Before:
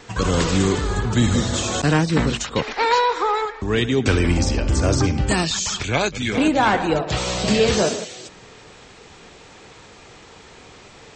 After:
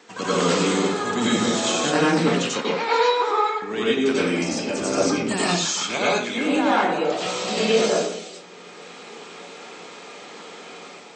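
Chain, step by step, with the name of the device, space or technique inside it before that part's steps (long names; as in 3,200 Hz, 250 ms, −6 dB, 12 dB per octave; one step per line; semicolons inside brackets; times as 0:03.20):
far laptop microphone (convolution reverb RT60 0.45 s, pre-delay 86 ms, DRR −7 dB; high-pass filter 200 Hz 24 dB per octave; automatic gain control gain up to 4 dB)
level −6.5 dB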